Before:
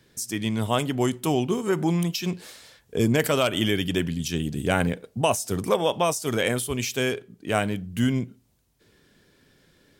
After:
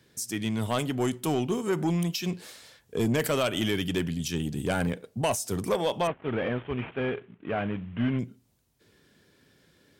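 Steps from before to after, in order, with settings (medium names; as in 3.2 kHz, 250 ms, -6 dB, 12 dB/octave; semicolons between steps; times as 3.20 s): 6.07–8.19 s: CVSD coder 16 kbps; high-pass 57 Hz; saturation -16 dBFS, distortion -15 dB; trim -2 dB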